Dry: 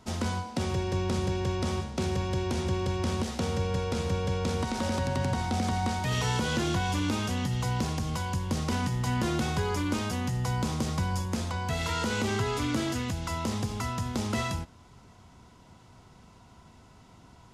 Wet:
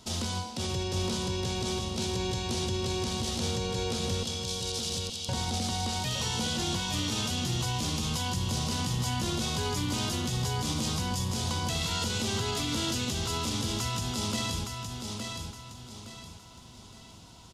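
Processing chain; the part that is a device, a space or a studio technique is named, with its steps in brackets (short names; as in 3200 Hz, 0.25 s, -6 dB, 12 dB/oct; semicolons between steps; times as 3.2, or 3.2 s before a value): 4.23–5.29 steep high-pass 2900 Hz 36 dB/oct; over-bright horn tweeter (resonant high shelf 2600 Hz +8 dB, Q 1.5; limiter -23 dBFS, peak gain reduction 10 dB); feedback echo 0.865 s, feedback 36%, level -5 dB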